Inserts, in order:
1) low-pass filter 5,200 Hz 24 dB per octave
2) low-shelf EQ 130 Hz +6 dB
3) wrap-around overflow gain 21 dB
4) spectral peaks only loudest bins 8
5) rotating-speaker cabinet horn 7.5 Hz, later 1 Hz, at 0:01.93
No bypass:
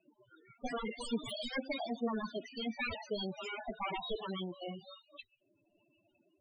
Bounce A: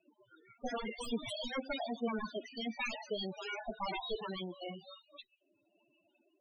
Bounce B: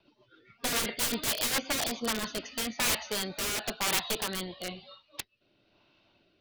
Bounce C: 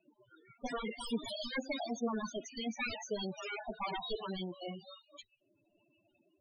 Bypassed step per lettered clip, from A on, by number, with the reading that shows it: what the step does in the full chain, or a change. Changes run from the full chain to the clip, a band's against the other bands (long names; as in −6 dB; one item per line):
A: 2, 125 Hz band −2.5 dB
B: 4, 8 kHz band +20.0 dB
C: 1, 8 kHz band +5.5 dB